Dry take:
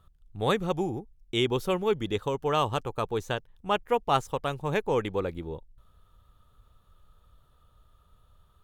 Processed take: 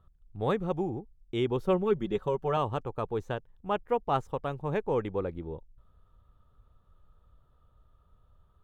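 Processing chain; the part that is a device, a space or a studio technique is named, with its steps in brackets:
0:01.67–0:02.57: comb filter 5.3 ms, depth 63%
through cloth (high-shelf EQ 2,500 Hz −16 dB)
level −1.5 dB

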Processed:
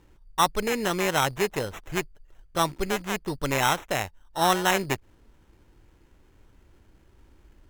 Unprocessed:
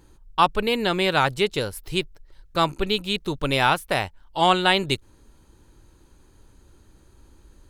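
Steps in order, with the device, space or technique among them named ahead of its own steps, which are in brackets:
crushed at another speed (tape speed factor 0.5×; decimation without filtering 19×; tape speed factor 2×)
level −3.5 dB

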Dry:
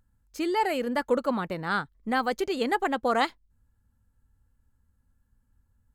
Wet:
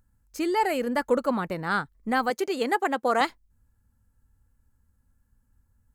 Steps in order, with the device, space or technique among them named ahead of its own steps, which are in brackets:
exciter from parts (in parallel at −6.5 dB: high-pass filter 3,200 Hz 24 dB per octave + soft clipping −32.5 dBFS, distortion −13 dB)
0:02.30–0:03.21: on the sum: high-pass filter 240 Hz 12 dB per octave
level +1.5 dB

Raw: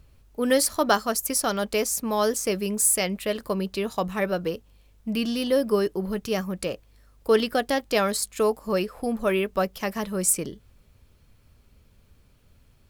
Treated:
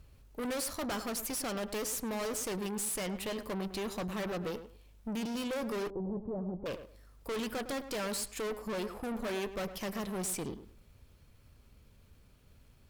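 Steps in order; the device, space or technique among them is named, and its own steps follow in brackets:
rockabilly slapback (tube saturation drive 34 dB, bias 0.55; tape delay 105 ms, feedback 23%, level −9.5 dB, low-pass 1,700 Hz)
0:05.90–0:06.66: inverse Chebyshev low-pass filter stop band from 3,500 Hz, stop band 70 dB

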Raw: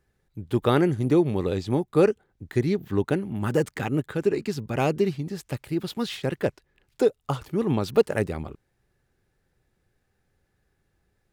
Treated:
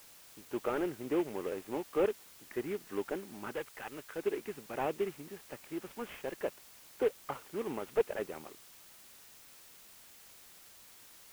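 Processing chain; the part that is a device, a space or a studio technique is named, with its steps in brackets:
army field radio (band-pass filter 370–2,800 Hz; variable-slope delta modulation 16 kbit/s; white noise bed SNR 18 dB)
0:03.52–0:04.16: parametric band 260 Hz −9.5 dB 2.5 octaves
level −7.5 dB

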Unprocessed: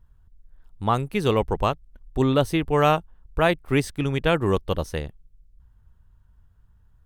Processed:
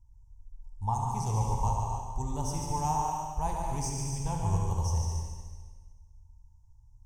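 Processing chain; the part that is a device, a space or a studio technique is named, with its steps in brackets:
drawn EQ curve 100 Hz 0 dB, 290 Hz −21 dB, 610 Hz −21 dB, 900 Hz +2 dB, 1,300 Hz −29 dB, 2,300 Hz −25 dB, 3,900 Hz −25 dB, 5,700 Hz +9 dB, 12,000 Hz −8 dB
multi-head tape echo (echo machine with several playback heads 72 ms, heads first and second, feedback 58%, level −8 dB; tape wow and flutter 12 cents)
reverb whose tail is shaped and stops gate 330 ms flat, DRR 1 dB
level −3 dB

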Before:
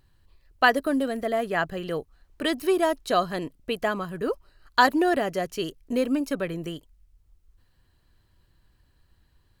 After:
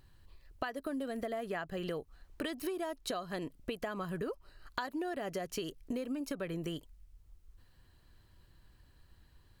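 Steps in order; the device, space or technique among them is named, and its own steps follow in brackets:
serial compression, peaks first (downward compressor 6 to 1, threshold −31 dBFS, peak gain reduction 16.5 dB; downward compressor 2.5 to 1, threshold −37 dBFS, peak gain reduction 7.5 dB)
level +1 dB

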